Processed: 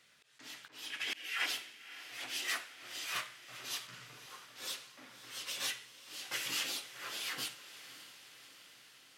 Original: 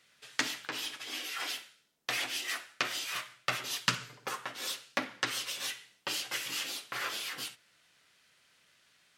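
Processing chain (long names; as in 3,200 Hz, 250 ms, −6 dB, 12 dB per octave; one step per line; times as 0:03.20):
0:00.90–0:01.46: flat-topped bell 2,200 Hz +8.5 dB 1.2 octaves
volume swells 393 ms
feedback delay with all-pass diffusion 575 ms, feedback 62%, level −14 dB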